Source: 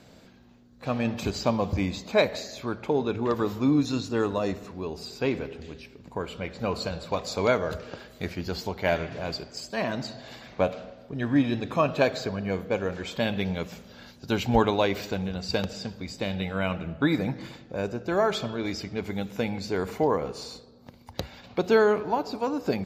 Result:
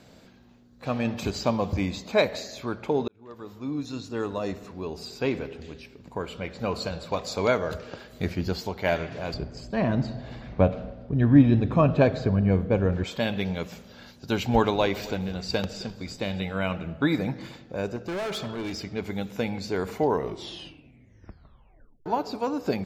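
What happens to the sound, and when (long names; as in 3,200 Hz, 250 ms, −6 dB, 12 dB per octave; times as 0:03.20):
0:03.08–0:04.91: fade in
0:08.12–0:08.53: low-shelf EQ 360 Hz +6.5 dB
0:09.34–0:13.04: RIAA equalisation playback
0:14.10–0:16.40: echo with shifted repeats 260 ms, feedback 36%, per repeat −94 Hz, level −19 dB
0:17.96–0:18.84: hard clipping −28.5 dBFS
0:20.00: tape stop 2.06 s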